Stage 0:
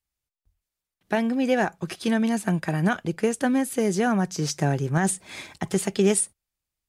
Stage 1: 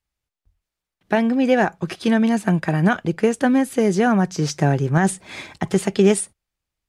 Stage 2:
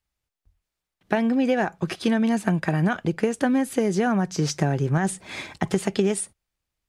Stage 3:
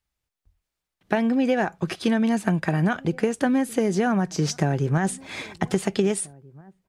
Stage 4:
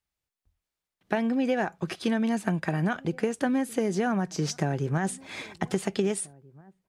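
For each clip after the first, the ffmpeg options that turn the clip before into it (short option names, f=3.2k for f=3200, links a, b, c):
-af "lowpass=f=3.9k:p=1,volume=5.5dB"
-af "acompressor=threshold=-18dB:ratio=6"
-filter_complex "[0:a]asplit=2[a][b];[b]adelay=1633,volume=-24dB,highshelf=f=4k:g=-36.7[c];[a][c]amix=inputs=2:normalize=0"
-af "lowshelf=f=79:g=-6.5,volume=-4dB"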